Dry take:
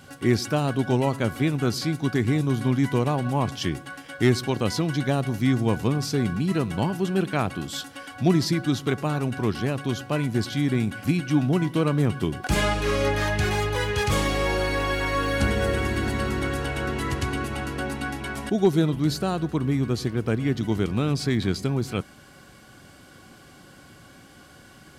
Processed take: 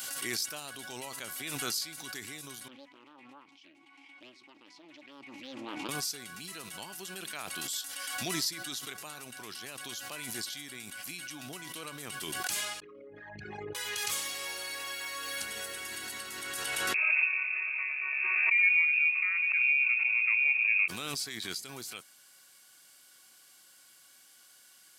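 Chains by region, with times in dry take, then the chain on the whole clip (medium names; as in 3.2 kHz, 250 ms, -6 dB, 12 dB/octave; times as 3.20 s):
2.68–5.89 s: vowel filter u + distance through air 50 m + loudspeaker Doppler distortion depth 0.64 ms
12.80–13.75 s: resonances exaggerated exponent 3 + high-pass 370 Hz 6 dB/octave + distance through air 96 m
16.94–20.88 s: bass shelf 190 Hz +9 dB + frequency inversion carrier 2.6 kHz + doubling 22 ms -13 dB
whole clip: differentiator; swell ahead of each attack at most 20 dB/s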